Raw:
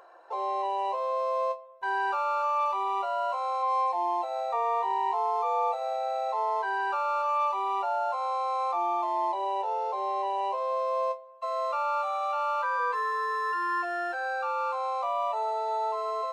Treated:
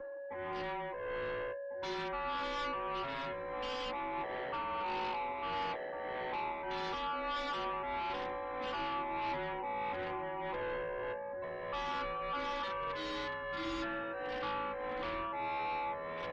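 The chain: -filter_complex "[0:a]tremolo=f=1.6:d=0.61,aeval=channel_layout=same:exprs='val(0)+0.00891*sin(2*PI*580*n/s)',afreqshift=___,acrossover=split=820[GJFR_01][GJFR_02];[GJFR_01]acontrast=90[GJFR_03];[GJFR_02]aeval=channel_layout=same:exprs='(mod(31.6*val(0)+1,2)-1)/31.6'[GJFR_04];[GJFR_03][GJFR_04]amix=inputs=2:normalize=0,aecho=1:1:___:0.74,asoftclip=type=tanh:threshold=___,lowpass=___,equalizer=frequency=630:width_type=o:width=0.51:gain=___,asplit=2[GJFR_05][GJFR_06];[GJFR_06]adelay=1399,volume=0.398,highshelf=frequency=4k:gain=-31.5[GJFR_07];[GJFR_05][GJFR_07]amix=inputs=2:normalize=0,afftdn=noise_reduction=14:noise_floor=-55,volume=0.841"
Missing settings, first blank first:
-21, 3.5, 0.0299, 3.3k, -13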